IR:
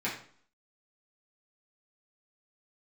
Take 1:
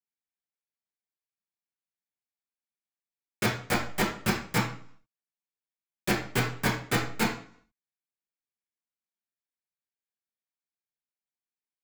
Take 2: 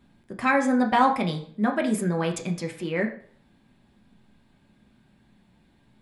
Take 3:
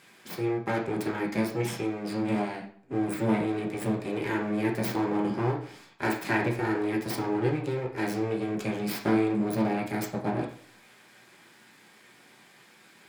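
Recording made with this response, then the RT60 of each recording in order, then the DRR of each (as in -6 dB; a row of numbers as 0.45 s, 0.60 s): 1; 0.50 s, 0.50 s, 0.50 s; -8.0 dB, 2.0 dB, -2.0 dB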